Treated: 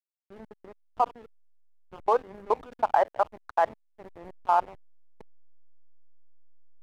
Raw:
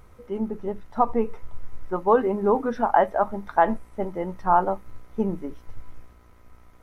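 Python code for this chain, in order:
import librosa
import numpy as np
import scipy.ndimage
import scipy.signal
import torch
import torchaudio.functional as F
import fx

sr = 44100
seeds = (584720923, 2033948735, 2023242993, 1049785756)

y = fx.filter_sweep_highpass(x, sr, from_hz=570.0, to_hz=3100.0, start_s=4.79, end_s=5.7, q=1.0)
y = fx.level_steps(y, sr, step_db=20)
y = fx.backlash(y, sr, play_db=-33.5)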